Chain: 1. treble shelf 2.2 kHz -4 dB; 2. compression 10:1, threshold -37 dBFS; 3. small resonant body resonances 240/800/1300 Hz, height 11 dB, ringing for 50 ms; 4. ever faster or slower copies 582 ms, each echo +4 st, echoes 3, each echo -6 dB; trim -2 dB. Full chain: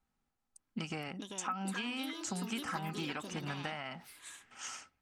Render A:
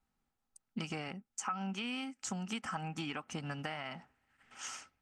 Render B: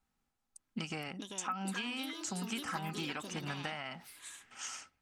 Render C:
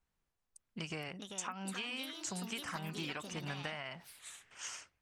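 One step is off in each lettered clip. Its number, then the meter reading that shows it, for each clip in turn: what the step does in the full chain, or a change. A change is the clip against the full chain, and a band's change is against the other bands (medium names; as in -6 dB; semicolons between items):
4, momentary loudness spread change -2 LU; 1, 8 kHz band +2.0 dB; 3, 1 kHz band -3.5 dB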